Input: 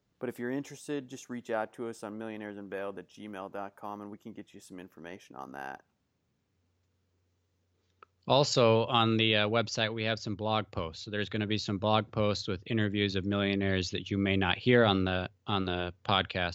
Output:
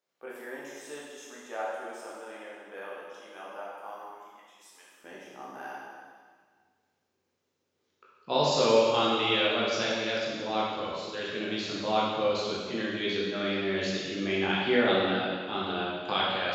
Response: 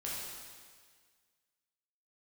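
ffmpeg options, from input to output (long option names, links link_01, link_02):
-filter_complex "[0:a]asetnsamples=nb_out_samples=441:pad=0,asendcmd='4.02 highpass f 1200;5.04 highpass f 220',highpass=550[link_01];[1:a]atrim=start_sample=2205[link_02];[link_01][link_02]afir=irnorm=-1:irlink=0"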